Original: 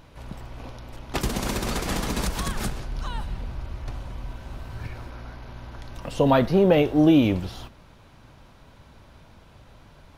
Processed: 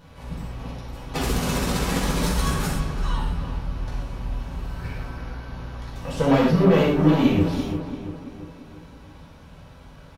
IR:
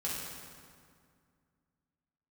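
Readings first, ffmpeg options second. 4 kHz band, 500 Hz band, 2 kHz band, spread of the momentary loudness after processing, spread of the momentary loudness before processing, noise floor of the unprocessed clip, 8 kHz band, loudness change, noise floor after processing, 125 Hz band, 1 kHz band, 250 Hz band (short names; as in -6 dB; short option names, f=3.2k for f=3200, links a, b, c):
+2.0 dB, 0.0 dB, +2.5 dB, 18 LU, 23 LU, -52 dBFS, +2.5 dB, 0.0 dB, -46 dBFS, +4.5 dB, +1.5 dB, +1.5 dB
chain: -filter_complex "[0:a]aeval=exprs='(tanh(8.91*val(0)+0.4)-tanh(0.4))/8.91':c=same,asplit=2[a][b];[b]adelay=339,lowpass=f=2.4k:p=1,volume=-9dB,asplit=2[c][d];[d]adelay=339,lowpass=f=2.4k:p=1,volume=0.51,asplit=2[e][f];[f]adelay=339,lowpass=f=2.4k:p=1,volume=0.51,asplit=2[g][h];[h]adelay=339,lowpass=f=2.4k:p=1,volume=0.51,asplit=2[i][j];[j]adelay=339,lowpass=f=2.4k:p=1,volume=0.51,asplit=2[k][l];[l]adelay=339,lowpass=f=2.4k:p=1,volume=0.51[m];[a][c][e][g][i][k][m]amix=inputs=7:normalize=0[n];[1:a]atrim=start_sample=2205,afade=t=out:st=0.19:d=0.01,atrim=end_sample=8820[o];[n][o]afir=irnorm=-1:irlink=0,volume=2dB"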